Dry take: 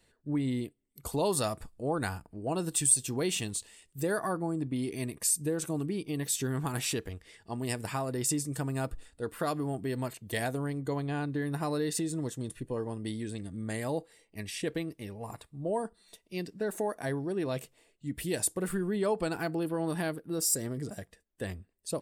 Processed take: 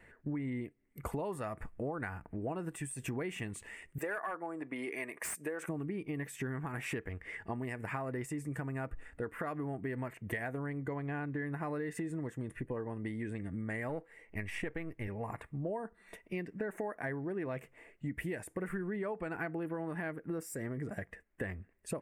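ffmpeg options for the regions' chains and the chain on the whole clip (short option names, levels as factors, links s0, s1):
-filter_complex "[0:a]asettb=1/sr,asplit=3[s0][s1][s2];[s0]atrim=end=3.984[s3];[s1]atrim=start=3.98:end=5.68,asetpts=PTS-STARTPTS,afade=t=in:d=0.004:c=qsin,afade=t=out:st=1.696:d=0.004:c=qsin,highpass=530,volume=23.7,asoftclip=hard,volume=0.0422[s4];[s2]atrim=start=5.676[s5];[s3][s4]acrossfade=d=0.004:c1=hsin:c2=qsin[s6];[s6][s5]acrossfade=d=0.004:c1=qsin:c2=hsin,asettb=1/sr,asplit=3[s7][s8][s9];[s7]atrim=end=13.894[s10];[s8]atrim=start=13.89:end=15.08,asetpts=PTS-STARTPTS,afade=t=in:d=0.004:c=qsin,afade=t=out:st=1.186:d=0.004:c=qsin,aeval=exprs='if(lt(val(0),0),0.708*val(0),val(0))':c=same,asubboost=boost=10:cutoff=91[s11];[s9]atrim=start=15.076[s12];[s10][s11]acrossfade=d=0.004:c1=hsin:c2=qsin[s13];[s13][s12]acrossfade=d=0.004:c1=qsin:c2=hsin,alimiter=limit=0.0794:level=0:latency=1:release=223,highshelf=f=2900:t=q:w=3:g=-12.5,acompressor=threshold=0.00631:ratio=5,volume=2.37"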